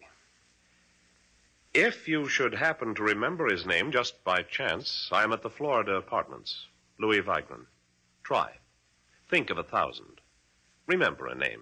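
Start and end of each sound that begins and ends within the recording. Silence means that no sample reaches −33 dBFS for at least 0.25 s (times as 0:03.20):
0:01.75–0:06.56
0:07.01–0:07.54
0:08.25–0:08.48
0:09.32–0:09.98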